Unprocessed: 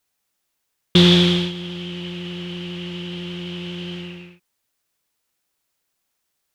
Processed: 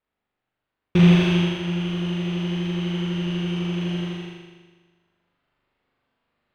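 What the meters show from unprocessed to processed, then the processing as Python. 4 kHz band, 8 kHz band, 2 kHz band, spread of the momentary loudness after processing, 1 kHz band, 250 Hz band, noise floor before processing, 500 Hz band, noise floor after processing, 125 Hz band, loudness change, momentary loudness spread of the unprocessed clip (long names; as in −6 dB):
−10.5 dB, can't be measured, −1.5 dB, 12 LU, −0.5 dB, +0.5 dB, −75 dBFS, −3.0 dB, −84 dBFS, +1.5 dB, −1.5 dB, 18 LU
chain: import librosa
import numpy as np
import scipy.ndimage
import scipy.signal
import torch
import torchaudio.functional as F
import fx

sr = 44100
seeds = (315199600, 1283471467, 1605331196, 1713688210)

y = fx.high_shelf(x, sr, hz=2100.0, db=-9.5)
y = fx.rider(y, sr, range_db=4, speed_s=0.5)
y = fx.sample_hold(y, sr, seeds[0], rate_hz=6000.0, jitter_pct=0)
y = fx.air_absorb(y, sr, metres=190.0)
y = fx.room_flutter(y, sr, wall_m=7.0, rt60_s=1.4)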